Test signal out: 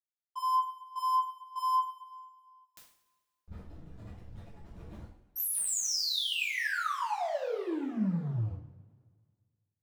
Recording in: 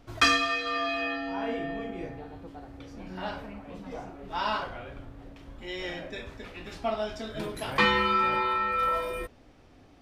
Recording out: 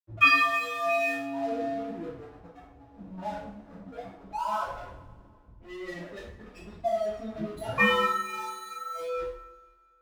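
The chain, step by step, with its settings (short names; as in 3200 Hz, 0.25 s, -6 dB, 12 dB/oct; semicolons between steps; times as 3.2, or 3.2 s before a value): spectral contrast raised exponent 2.9; crossover distortion -45.5 dBFS; two-slope reverb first 0.5 s, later 1.8 s, from -18 dB, DRR -6.5 dB; gain -4.5 dB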